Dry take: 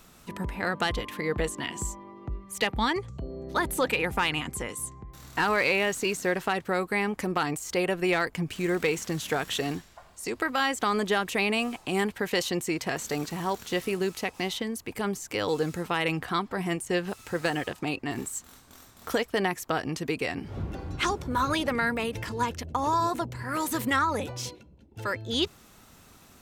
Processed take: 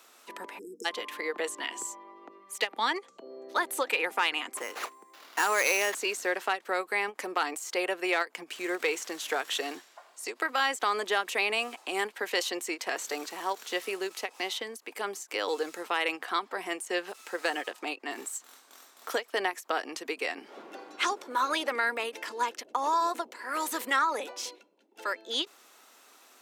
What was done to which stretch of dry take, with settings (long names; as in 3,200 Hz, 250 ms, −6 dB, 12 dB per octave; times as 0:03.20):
0:00.59–0:00.85: time-frequency box erased 490–5,100 Hz
0:04.57–0:05.95: sample-rate reduction 8,500 Hz
whole clip: Bessel high-pass filter 500 Hz, order 8; high-shelf EQ 11,000 Hz −4 dB; every ending faded ahead of time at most 430 dB per second